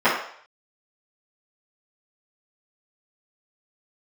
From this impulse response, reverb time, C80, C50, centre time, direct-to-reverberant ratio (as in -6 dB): 0.60 s, 7.5 dB, 3.5 dB, 40 ms, -14.5 dB